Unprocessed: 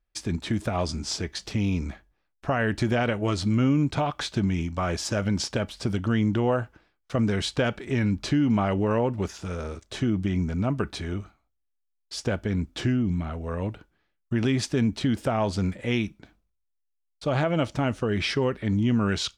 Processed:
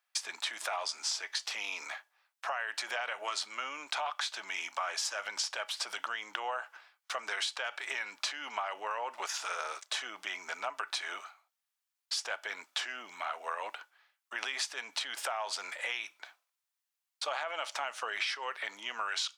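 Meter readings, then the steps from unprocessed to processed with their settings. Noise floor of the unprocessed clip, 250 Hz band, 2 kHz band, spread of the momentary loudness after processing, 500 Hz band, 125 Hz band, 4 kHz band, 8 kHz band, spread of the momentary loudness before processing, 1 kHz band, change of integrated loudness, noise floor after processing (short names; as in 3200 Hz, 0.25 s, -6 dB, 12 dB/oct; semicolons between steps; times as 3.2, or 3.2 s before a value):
-76 dBFS, -36.5 dB, -1.5 dB, 6 LU, -15.5 dB, under -40 dB, -1.0 dB, -0.5 dB, 8 LU, -4.0 dB, -9.5 dB, under -85 dBFS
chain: limiter -20.5 dBFS, peak gain reduction 7 dB; HPF 800 Hz 24 dB/oct; compressor 6:1, threshold -40 dBFS, peak gain reduction 12.5 dB; gain +8 dB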